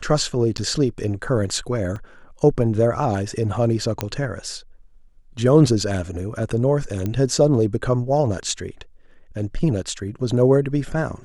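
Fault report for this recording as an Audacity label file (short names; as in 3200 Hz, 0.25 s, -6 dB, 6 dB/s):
0.570000	0.580000	gap 9.5 ms
1.960000	1.960000	gap 3.2 ms
4.010000	4.010000	pop -7 dBFS
7.060000	7.060000	pop -13 dBFS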